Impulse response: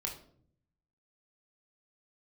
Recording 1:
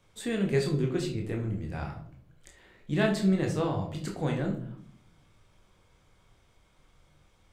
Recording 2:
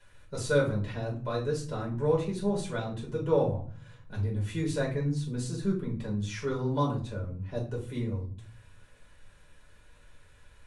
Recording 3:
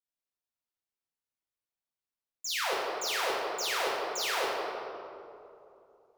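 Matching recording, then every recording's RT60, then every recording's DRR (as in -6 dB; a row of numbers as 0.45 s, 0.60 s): 1; 0.60 s, 0.45 s, 2.8 s; 0.5 dB, -3.0 dB, -6.0 dB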